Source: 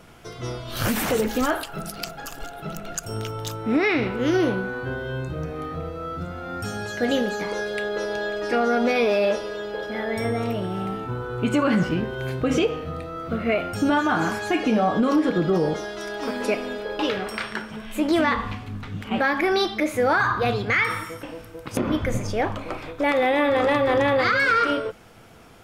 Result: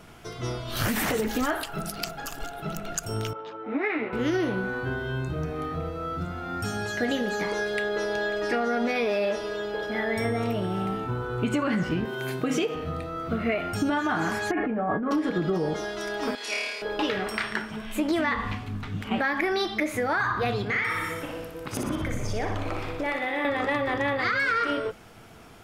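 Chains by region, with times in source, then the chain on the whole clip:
3.33–4.13 s: band-pass 330–2300 Hz + distance through air 110 m + three-phase chorus
12.05–12.75 s: high-pass 150 Hz 24 dB/octave + treble shelf 8.1 kHz +9.5 dB
14.51–15.11 s: Chebyshev low-pass 1.8 kHz, order 3 + compressor with a negative ratio -25 dBFS
16.35–16.82 s: band-pass filter 4.4 kHz, Q 0.78 + flutter echo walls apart 4.6 m, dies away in 1.3 s
20.63–23.45 s: compression 2.5:1, threshold -28 dBFS + flutter echo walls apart 10.4 m, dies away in 0.76 s
whole clip: dynamic bell 1.9 kHz, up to +6 dB, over -43 dBFS, Q 5.9; compression, threshold -22 dBFS; band-stop 520 Hz, Q 12

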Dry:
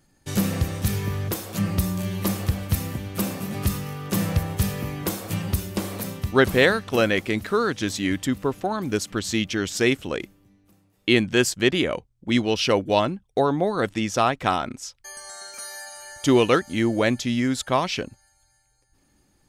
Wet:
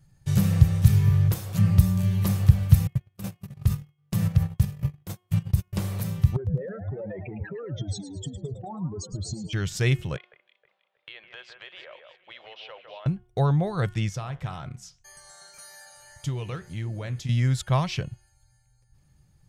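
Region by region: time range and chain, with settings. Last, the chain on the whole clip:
2.87–5.73 s: gate -28 dBFS, range -41 dB + compression 3:1, threshold -23 dBFS + square tremolo 2.7 Hz, depth 65%, duty 80%
6.36–9.53 s: spectral contrast enhancement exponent 3.8 + compression 4:1, threshold -27 dBFS + frequency-shifting echo 108 ms, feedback 50%, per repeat +97 Hz, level -12 dB
10.16–13.06 s: Chebyshev band-pass 550–3600 Hz, order 3 + compression 3:1, threshold -38 dBFS + echo whose repeats swap between lows and highs 158 ms, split 2.3 kHz, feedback 59%, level -6 dB
14.09–17.29 s: compression 2.5:1, threshold -25 dBFS + flange 1.8 Hz, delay 6.4 ms, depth 9.8 ms, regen -76%
whole clip: resonant low shelf 190 Hz +10 dB, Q 3; de-hum 361.1 Hz, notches 9; trim -5.5 dB

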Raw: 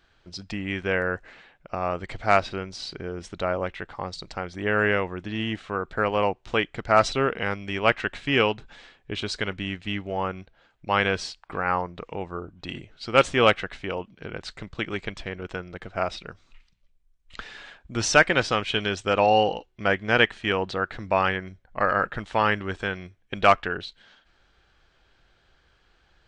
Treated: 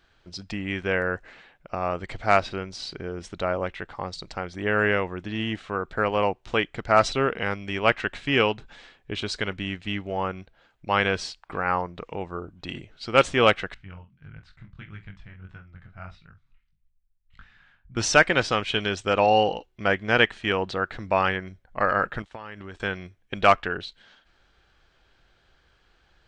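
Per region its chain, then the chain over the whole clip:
13.74–17.97 s: FFT filter 140 Hz 0 dB, 430 Hz -24 dB, 1.5 kHz -9 dB, 7.2 kHz -23 dB + chorus 1.6 Hz, delay 18.5 ms, depth 5.9 ms + doubling 46 ms -13.5 dB
22.22–22.80 s: expander -36 dBFS + compression 12:1, threshold -34 dBFS
whole clip: none

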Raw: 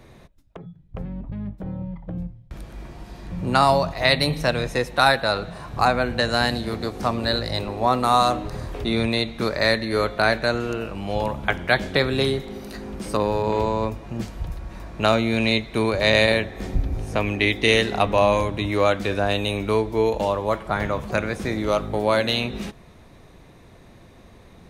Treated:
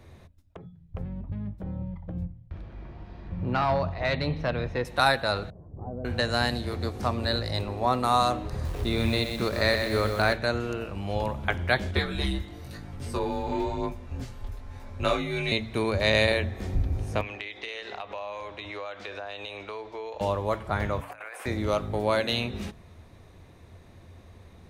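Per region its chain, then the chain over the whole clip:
2.25–4.85 s: hard clipper -13 dBFS + distance through air 250 m
5.50–6.05 s: CVSD coder 16 kbps + four-pole ladder low-pass 600 Hz, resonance 25%
8.51–10.33 s: bass shelf 150 Hz +3.5 dB + bit-crushed delay 124 ms, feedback 55%, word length 6-bit, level -6 dB
11.91–15.52 s: comb 6.4 ms, depth 64% + chorus 1 Hz, delay 18 ms, depth 4.4 ms + frequency shift -74 Hz
17.21–20.21 s: three-band isolator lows -20 dB, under 440 Hz, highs -24 dB, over 6.3 kHz + compression, threshold -28 dBFS
21.01–21.46 s: high-pass 660 Hz 24 dB/octave + high-order bell 4.9 kHz -12 dB 1.2 oct + compressor with a negative ratio -37 dBFS
whole clip: peaking EQ 86 Hz +14.5 dB 0.36 oct; de-hum 56.08 Hz, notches 5; trim -5 dB

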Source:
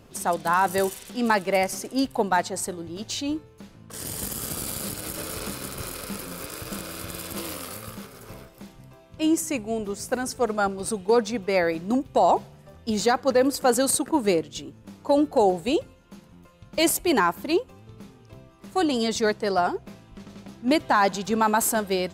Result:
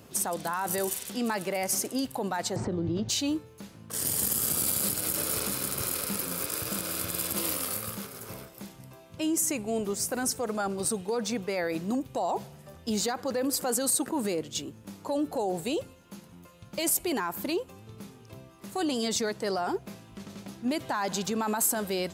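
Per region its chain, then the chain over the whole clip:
2.56–3.09 s: Bessel low-pass 4.5 kHz, order 4 + tilt EQ -3.5 dB/octave + three bands compressed up and down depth 100%
whole clip: peak limiter -22 dBFS; high-pass 78 Hz; treble shelf 7.1 kHz +9.5 dB

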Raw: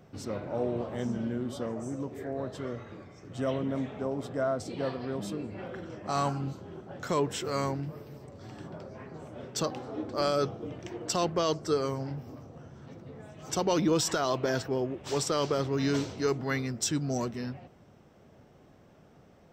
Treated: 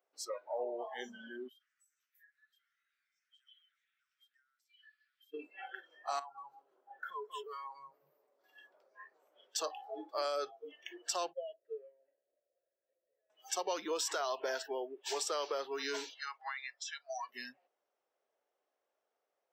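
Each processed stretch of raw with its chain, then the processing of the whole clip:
1.48–5.34 s: steep high-pass 1.4 kHz 72 dB/octave + compression 5:1, threshold -58 dBFS
6.19–8.44 s: treble shelf 2.6 kHz -10.5 dB + feedback delay 187 ms, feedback 16%, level -7 dB + compression 4:1, threshold -37 dBFS
11.33–13.30 s: vowel filter e + distance through air 460 m + comb 3.1 ms, depth 54%
16.14–17.29 s: high-pass 650 Hz 24 dB/octave + compression 10:1, threshold -35 dBFS + distance through air 110 m
whole clip: spectral noise reduction 27 dB; high-pass 470 Hz 24 dB/octave; compression 2.5:1, threshold -42 dBFS; trim +4 dB

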